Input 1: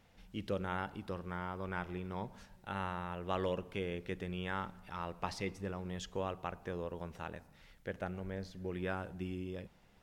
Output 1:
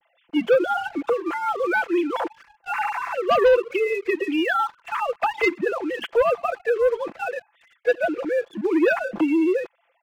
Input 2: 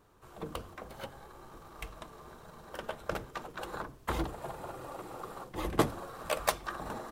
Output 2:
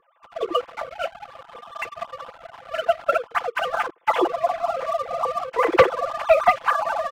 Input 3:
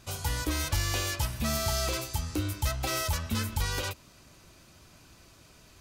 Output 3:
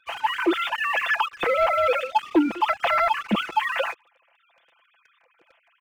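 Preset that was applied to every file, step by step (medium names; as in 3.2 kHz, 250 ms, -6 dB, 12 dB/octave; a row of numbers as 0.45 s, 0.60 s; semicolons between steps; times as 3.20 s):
formants replaced by sine waves; comb 5.9 ms, depth 71%; waveshaping leveller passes 2; normalise loudness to -23 LUFS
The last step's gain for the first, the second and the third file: +10.0 dB, +7.0 dB, -1.5 dB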